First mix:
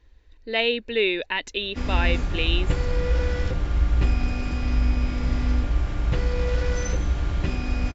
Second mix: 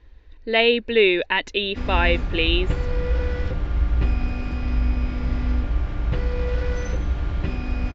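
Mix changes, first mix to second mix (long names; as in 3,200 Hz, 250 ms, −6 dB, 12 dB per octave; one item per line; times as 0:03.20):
speech +6.5 dB
master: add high-frequency loss of the air 140 metres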